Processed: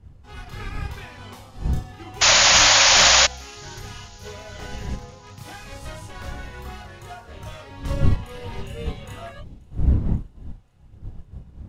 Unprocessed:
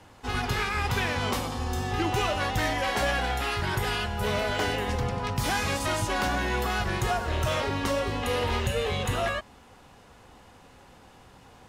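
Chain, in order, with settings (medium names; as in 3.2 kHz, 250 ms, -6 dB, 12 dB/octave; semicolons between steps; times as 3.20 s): wind noise 98 Hz -24 dBFS; chorus voices 2, 0.82 Hz, delay 30 ms, depth 1.1 ms; painted sound noise, 2.21–3.27 s, 520–7100 Hz -13 dBFS; feedback echo behind a high-pass 535 ms, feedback 66%, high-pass 3.7 kHz, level -20.5 dB; upward expansion 1.5:1, over -36 dBFS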